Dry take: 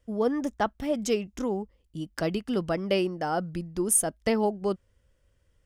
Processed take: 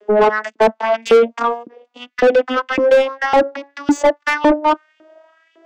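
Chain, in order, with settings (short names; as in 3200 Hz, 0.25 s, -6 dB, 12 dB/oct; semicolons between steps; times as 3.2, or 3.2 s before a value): vocoder on a gliding note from G#3, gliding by +8 st; LFO high-pass saw up 1.8 Hz 310–2900 Hz; overdrive pedal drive 32 dB, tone 1200 Hz, clips at -10.5 dBFS; gain +8 dB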